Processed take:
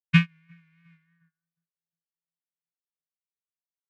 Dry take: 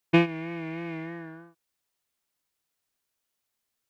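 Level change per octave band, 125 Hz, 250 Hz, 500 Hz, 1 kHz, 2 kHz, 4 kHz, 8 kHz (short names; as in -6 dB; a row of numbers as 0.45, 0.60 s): +5.5 dB, -1.0 dB, under -35 dB, -8.5 dB, +2.5 dB, +3.5 dB, n/a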